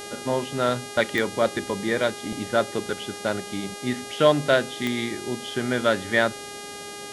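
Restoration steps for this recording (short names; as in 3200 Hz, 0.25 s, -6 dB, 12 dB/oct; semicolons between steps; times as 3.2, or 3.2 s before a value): de-click; de-hum 408.2 Hz, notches 28; noise print and reduce 30 dB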